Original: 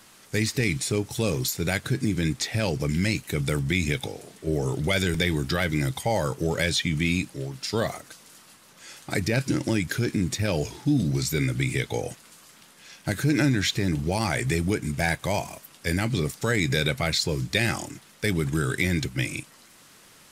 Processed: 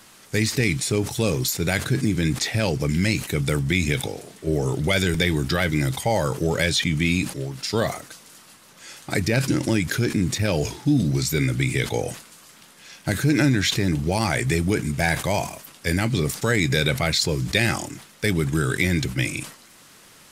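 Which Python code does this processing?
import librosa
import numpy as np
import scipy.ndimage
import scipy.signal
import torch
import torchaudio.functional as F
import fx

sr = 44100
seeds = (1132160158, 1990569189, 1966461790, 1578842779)

y = fx.sustainer(x, sr, db_per_s=120.0)
y = y * librosa.db_to_amplitude(3.0)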